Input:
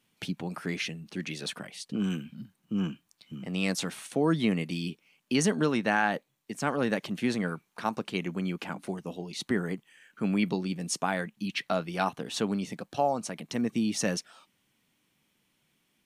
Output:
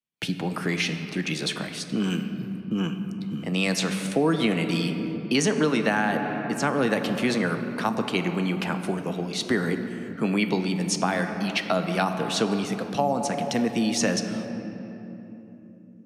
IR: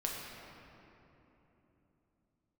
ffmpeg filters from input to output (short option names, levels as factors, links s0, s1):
-filter_complex "[0:a]agate=range=0.0224:threshold=0.002:ratio=3:detection=peak,asplit=2[s0][s1];[1:a]atrim=start_sample=2205[s2];[s1][s2]afir=irnorm=-1:irlink=0,volume=0.531[s3];[s0][s3]amix=inputs=2:normalize=0,acrossover=split=110|330|7700[s4][s5][s6][s7];[s4]acompressor=threshold=0.00224:ratio=4[s8];[s5]acompressor=threshold=0.0282:ratio=4[s9];[s6]acompressor=threshold=0.0501:ratio=4[s10];[s7]acompressor=threshold=0.00398:ratio=4[s11];[s8][s9][s10][s11]amix=inputs=4:normalize=0,volume=1.68"